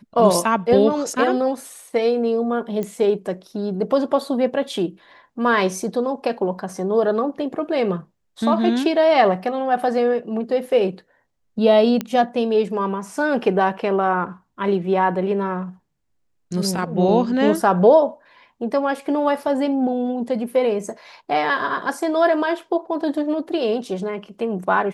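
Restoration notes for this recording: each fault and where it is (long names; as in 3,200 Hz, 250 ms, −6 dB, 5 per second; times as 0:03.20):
0:02.83: click −15 dBFS
0:12.01: click −10 dBFS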